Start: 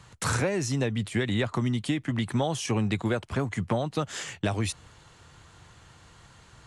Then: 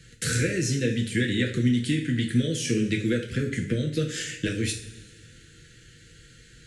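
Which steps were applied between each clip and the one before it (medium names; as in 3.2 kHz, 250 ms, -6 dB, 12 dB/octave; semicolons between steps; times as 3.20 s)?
elliptic band-stop 470–1600 Hz, stop band 80 dB; two-slope reverb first 0.43 s, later 1.9 s, from -17 dB, DRR 0.5 dB; trim +1.5 dB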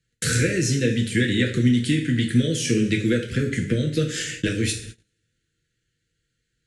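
gate -40 dBFS, range -28 dB; trim +4 dB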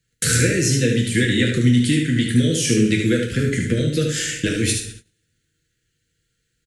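treble shelf 9.3 kHz +9.5 dB; delay 74 ms -5.5 dB; trim +2 dB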